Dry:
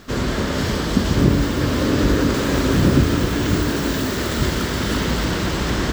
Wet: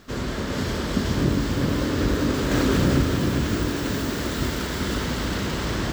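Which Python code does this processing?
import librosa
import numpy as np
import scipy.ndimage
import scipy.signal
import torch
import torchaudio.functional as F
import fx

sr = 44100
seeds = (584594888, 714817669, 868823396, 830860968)

y = x + 10.0 ** (-3.5 / 20.0) * np.pad(x, (int(403 * sr / 1000.0), 0))[:len(x)]
y = fx.env_flatten(y, sr, amount_pct=50, at=(2.51, 3.02))
y = y * 10.0 ** (-6.5 / 20.0)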